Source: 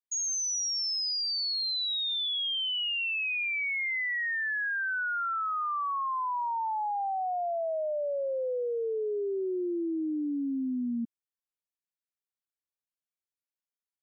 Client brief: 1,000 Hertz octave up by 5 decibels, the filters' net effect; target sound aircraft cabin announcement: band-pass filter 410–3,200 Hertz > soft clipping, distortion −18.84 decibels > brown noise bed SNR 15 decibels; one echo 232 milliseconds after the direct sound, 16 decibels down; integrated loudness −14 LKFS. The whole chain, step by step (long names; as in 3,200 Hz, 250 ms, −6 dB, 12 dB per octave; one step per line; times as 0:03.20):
band-pass filter 410–3,200 Hz
parametric band 1,000 Hz +6.5 dB
single-tap delay 232 ms −16 dB
soft clipping −23.5 dBFS
brown noise bed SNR 15 dB
level +16.5 dB